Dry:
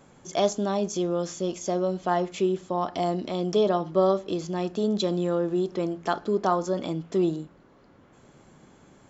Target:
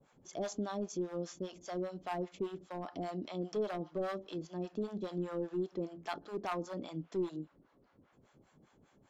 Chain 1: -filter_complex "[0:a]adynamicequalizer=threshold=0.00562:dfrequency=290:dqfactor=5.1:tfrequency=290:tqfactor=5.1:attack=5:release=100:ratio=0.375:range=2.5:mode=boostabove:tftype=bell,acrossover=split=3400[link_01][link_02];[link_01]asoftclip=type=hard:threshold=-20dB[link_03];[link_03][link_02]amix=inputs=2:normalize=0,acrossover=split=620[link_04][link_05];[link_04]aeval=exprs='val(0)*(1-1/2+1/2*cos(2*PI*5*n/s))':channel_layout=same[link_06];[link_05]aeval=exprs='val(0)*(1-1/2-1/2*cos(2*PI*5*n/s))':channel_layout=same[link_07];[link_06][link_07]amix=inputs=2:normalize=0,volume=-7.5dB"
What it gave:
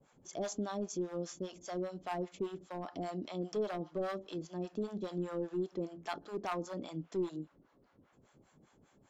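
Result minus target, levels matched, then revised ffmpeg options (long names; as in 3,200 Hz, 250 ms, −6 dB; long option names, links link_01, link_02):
8,000 Hz band +3.0 dB
-filter_complex "[0:a]adynamicequalizer=threshold=0.00562:dfrequency=290:dqfactor=5.1:tfrequency=290:tqfactor=5.1:attack=5:release=100:ratio=0.375:range=2.5:mode=boostabove:tftype=bell,lowpass=6500,acrossover=split=3400[link_01][link_02];[link_01]asoftclip=type=hard:threshold=-20dB[link_03];[link_03][link_02]amix=inputs=2:normalize=0,acrossover=split=620[link_04][link_05];[link_04]aeval=exprs='val(0)*(1-1/2+1/2*cos(2*PI*5*n/s))':channel_layout=same[link_06];[link_05]aeval=exprs='val(0)*(1-1/2-1/2*cos(2*PI*5*n/s))':channel_layout=same[link_07];[link_06][link_07]amix=inputs=2:normalize=0,volume=-7.5dB"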